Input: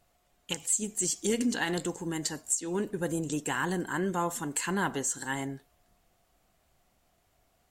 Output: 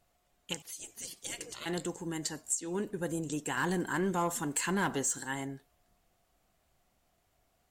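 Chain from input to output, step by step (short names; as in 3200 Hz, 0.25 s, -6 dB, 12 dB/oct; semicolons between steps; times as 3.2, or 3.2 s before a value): 0.62–1.66 spectral gate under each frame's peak -15 dB weak; 3.57–5.21 sample leveller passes 1; gain -3.5 dB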